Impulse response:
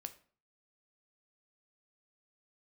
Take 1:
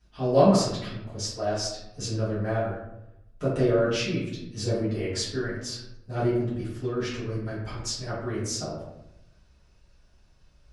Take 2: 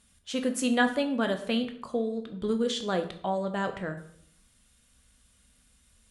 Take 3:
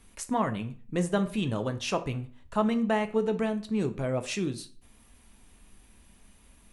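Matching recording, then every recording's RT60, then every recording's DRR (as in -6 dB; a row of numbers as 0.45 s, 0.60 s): 3; 0.90 s, 0.65 s, 0.45 s; -12.0 dB, 6.0 dB, 8.5 dB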